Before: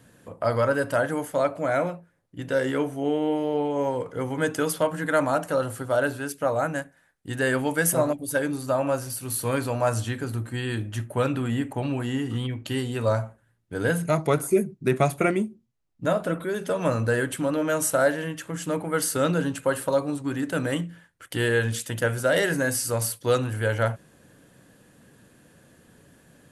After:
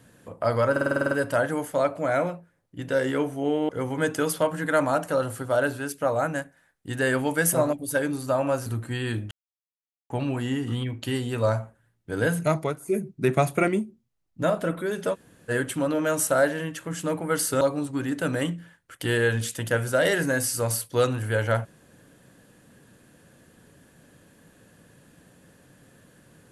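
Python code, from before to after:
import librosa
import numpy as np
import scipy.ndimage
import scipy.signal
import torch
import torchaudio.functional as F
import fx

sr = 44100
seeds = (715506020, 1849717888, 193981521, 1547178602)

y = fx.edit(x, sr, fx.stutter(start_s=0.71, slice_s=0.05, count=9),
    fx.cut(start_s=3.29, length_s=0.8),
    fx.cut(start_s=9.06, length_s=1.23),
    fx.silence(start_s=10.94, length_s=0.79),
    fx.fade_down_up(start_s=14.17, length_s=0.51, db=-15.0, fade_s=0.24),
    fx.room_tone_fill(start_s=16.77, length_s=0.36, crossfade_s=0.04),
    fx.cut(start_s=19.24, length_s=0.68), tone=tone)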